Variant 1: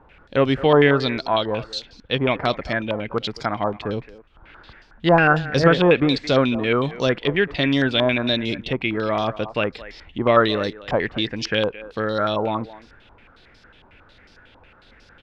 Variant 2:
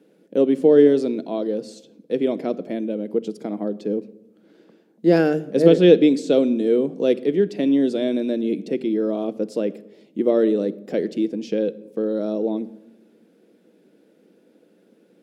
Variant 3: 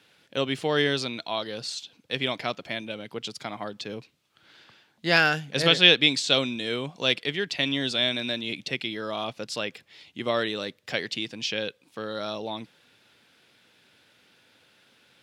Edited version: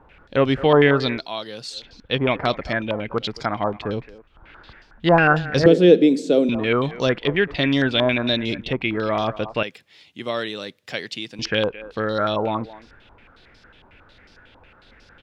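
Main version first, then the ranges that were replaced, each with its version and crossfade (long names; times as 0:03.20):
1
0:01.21–0:01.77: punch in from 3, crossfade 0.16 s
0:05.66–0:06.49: punch in from 2
0:09.63–0:11.39: punch in from 3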